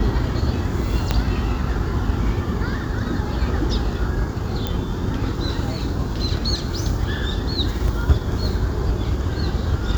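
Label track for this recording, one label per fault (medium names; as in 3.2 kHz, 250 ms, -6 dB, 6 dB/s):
1.110000	1.110000	pop -5 dBFS
4.670000	4.670000	pop -9 dBFS
7.880000	7.880000	dropout 2.5 ms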